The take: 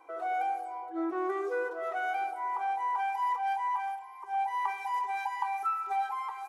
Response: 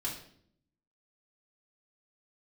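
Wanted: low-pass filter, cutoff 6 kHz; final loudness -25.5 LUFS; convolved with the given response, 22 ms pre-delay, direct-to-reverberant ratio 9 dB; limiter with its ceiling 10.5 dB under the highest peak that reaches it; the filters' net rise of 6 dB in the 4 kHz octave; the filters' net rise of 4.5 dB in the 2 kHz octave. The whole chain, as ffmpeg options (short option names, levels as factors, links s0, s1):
-filter_complex "[0:a]lowpass=6000,equalizer=f=2000:t=o:g=4.5,equalizer=f=4000:t=o:g=7,alimiter=level_in=1.41:limit=0.0631:level=0:latency=1,volume=0.708,asplit=2[s0][s1];[1:a]atrim=start_sample=2205,adelay=22[s2];[s1][s2]afir=irnorm=-1:irlink=0,volume=0.282[s3];[s0][s3]amix=inputs=2:normalize=0,volume=2.51"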